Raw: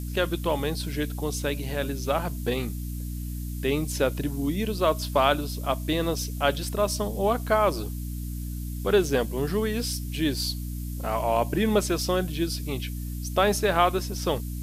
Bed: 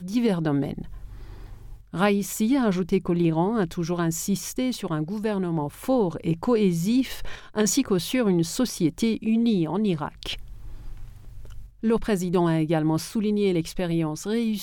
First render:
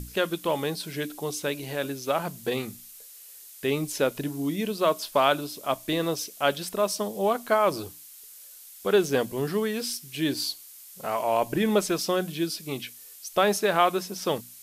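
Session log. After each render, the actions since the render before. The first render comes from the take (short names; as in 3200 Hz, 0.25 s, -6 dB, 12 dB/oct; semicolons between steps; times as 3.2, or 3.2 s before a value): notches 60/120/180/240/300 Hz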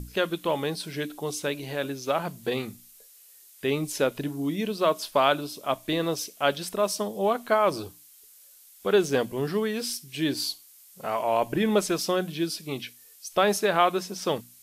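noise print and reduce 6 dB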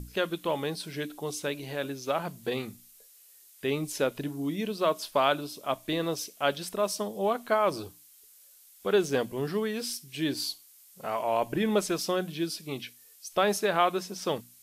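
gain -3 dB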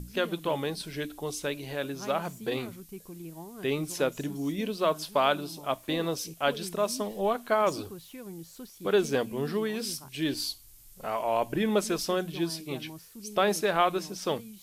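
add bed -21 dB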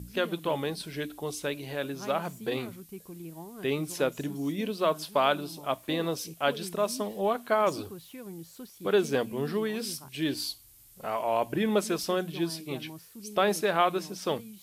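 HPF 53 Hz; bell 6200 Hz -2.5 dB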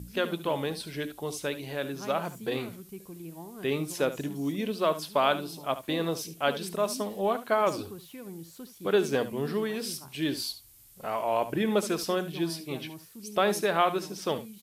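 echo 72 ms -14 dB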